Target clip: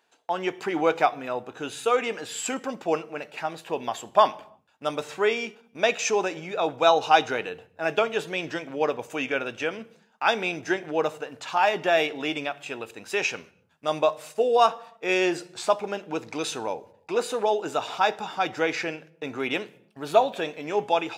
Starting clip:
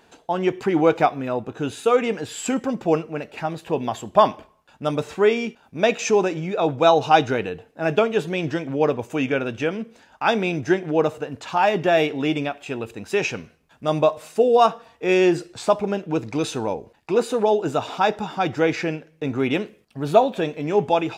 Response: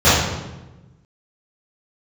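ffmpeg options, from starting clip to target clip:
-filter_complex "[0:a]agate=range=-11dB:threshold=-41dB:ratio=16:detection=peak,highpass=f=780:p=1,asplit=2[a][b];[1:a]atrim=start_sample=2205,afade=t=out:st=0.39:d=0.01,atrim=end_sample=17640,lowshelf=f=150:g=11[c];[b][c]afir=irnorm=-1:irlink=0,volume=-50.5dB[d];[a][d]amix=inputs=2:normalize=0"

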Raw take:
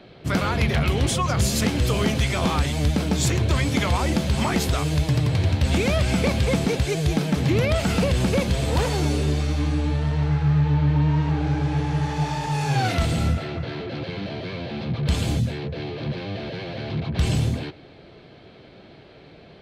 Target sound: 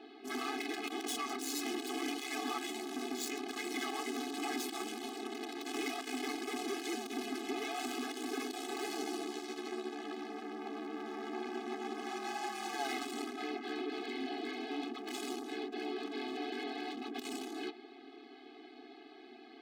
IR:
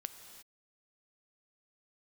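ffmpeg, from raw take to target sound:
-af "asoftclip=type=hard:threshold=-28.5dB,aeval=exprs='val(0)*sin(2*PI*68*n/s)':c=same,afftfilt=real='re*eq(mod(floor(b*sr/1024/220),2),1)':imag='im*eq(mod(floor(b*sr/1024/220),2),1)':win_size=1024:overlap=0.75"

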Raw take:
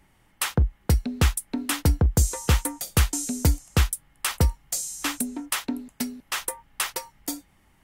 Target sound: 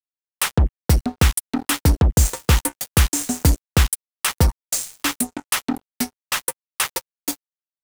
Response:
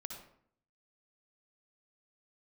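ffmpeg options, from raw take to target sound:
-af "aeval=exprs='val(0)+0.5*0.0316*sgn(val(0))':c=same,acrusher=bits=3:mix=0:aa=0.5,volume=3.5dB"

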